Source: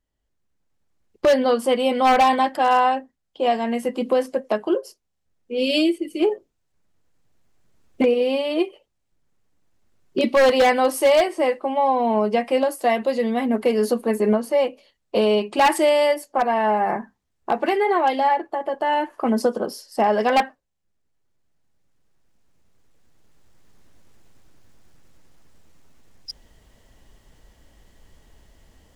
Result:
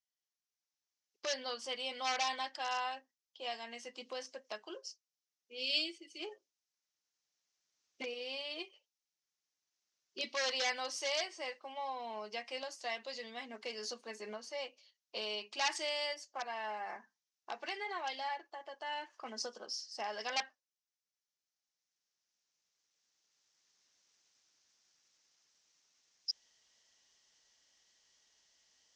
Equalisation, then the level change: band-pass filter 5.9 kHz, Q 3.6; distance through air 130 m; +8.0 dB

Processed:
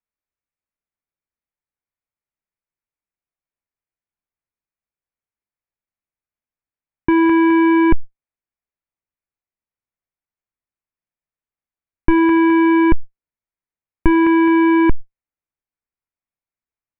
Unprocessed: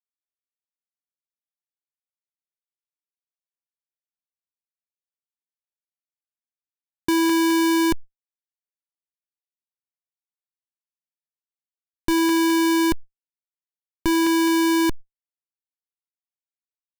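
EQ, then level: elliptic low-pass 2.4 kHz, stop band 80 dB; bass shelf 130 Hz +11 dB; +5.5 dB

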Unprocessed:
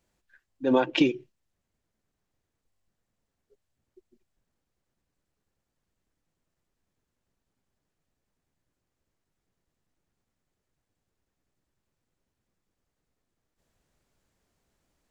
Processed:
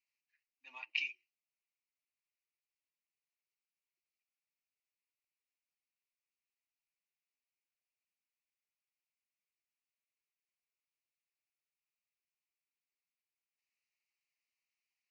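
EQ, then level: ladder band-pass 3 kHz, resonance 45%; static phaser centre 2.3 kHz, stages 8; +3.0 dB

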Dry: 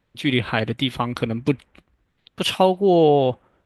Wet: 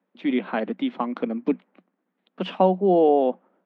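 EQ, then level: rippled Chebyshev high-pass 180 Hz, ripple 3 dB; tape spacing loss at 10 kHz 41 dB; +1.5 dB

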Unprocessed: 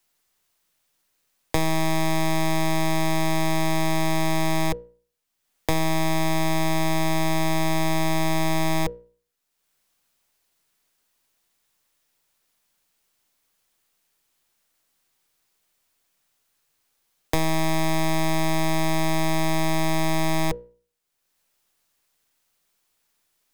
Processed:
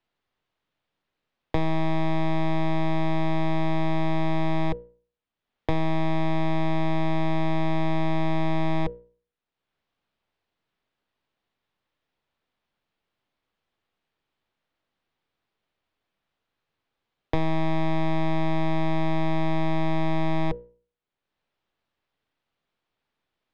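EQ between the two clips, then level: tape spacing loss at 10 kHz 39 dB; peaking EQ 3.5 kHz +6 dB 0.98 oct; 0.0 dB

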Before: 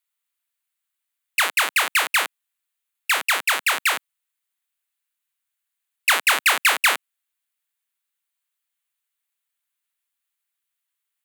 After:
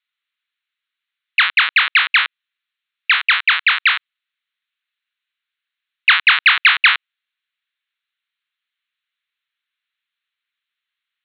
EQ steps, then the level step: high-pass 1.3 kHz 24 dB/octave; steep low-pass 4.1 kHz 96 dB/octave; +7.5 dB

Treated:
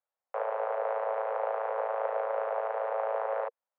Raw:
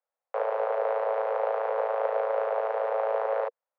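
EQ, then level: high-pass 580 Hz 12 dB/octave; distance through air 330 m; 0.0 dB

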